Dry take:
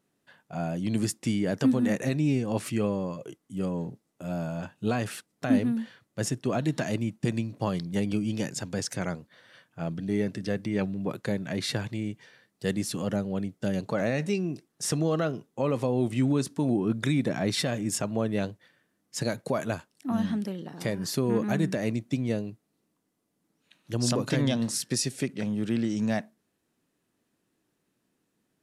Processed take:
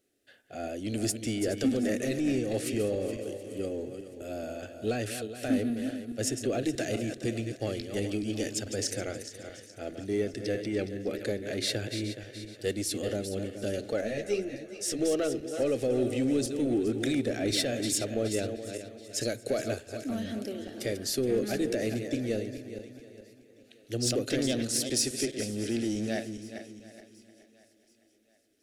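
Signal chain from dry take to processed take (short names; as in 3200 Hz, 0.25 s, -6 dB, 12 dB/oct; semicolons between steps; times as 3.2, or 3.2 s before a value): regenerating reverse delay 0.211 s, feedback 57%, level -9 dB; in parallel at -3 dB: hard clip -25 dBFS, distortion -10 dB; on the sum: fixed phaser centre 410 Hz, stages 4; thinning echo 0.727 s, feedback 45%, high-pass 210 Hz, level -21 dB; on a send at -22 dB: reverb RT60 1.6 s, pre-delay 51 ms; 14.01–14.99 on the sum: ensemble effect; gain -2.5 dB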